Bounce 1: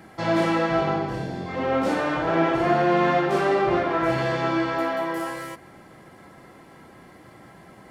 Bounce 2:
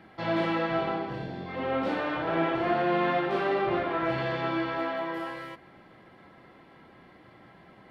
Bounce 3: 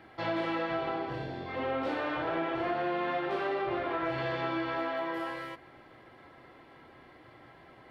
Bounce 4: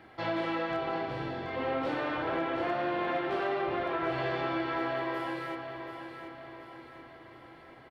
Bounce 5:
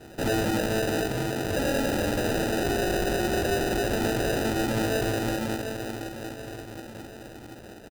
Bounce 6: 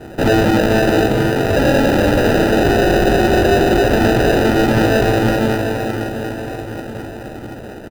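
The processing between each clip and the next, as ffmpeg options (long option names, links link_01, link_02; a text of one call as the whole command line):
ffmpeg -i in.wav -af "highshelf=frequency=5100:width_type=q:width=1.5:gain=-12,bandreject=frequency=50:width_type=h:width=6,bandreject=frequency=100:width_type=h:width=6,bandreject=frequency=150:width_type=h:width=6,volume=-6dB" out.wav
ffmpeg -i in.wav -af "equalizer=frequency=190:width_type=o:width=0.33:gain=-14,acompressor=threshold=-29dB:ratio=4" out.wav
ffmpeg -i in.wav -af "asoftclip=type=hard:threshold=-22dB,aecho=1:1:730|1460|2190|2920|3650:0.376|0.18|0.0866|0.0416|0.02" out.wav
ffmpeg -i in.wav -af "aresample=8000,aeval=exprs='0.0376*(abs(mod(val(0)/0.0376+3,4)-2)-1)':channel_layout=same,aresample=44100,acrusher=samples=40:mix=1:aa=0.000001,volume=8dB" out.wav
ffmpeg -i in.wav -filter_complex "[0:a]aecho=1:1:485:0.376,asplit=2[link_01][link_02];[link_02]adynamicsmooth=sensitivity=1.5:basefreq=3000,volume=3dB[link_03];[link_01][link_03]amix=inputs=2:normalize=0,volume=5dB" out.wav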